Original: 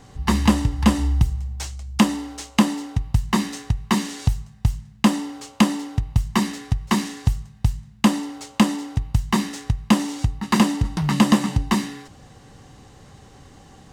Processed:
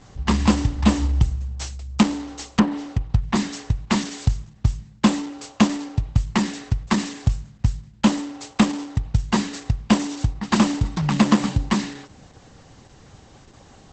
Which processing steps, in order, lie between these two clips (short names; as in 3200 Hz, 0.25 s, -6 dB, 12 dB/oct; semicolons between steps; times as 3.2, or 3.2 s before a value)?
2.4–3.35 treble ducked by the level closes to 1800 Hz, closed at -14 dBFS; Opus 10 kbps 48000 Hz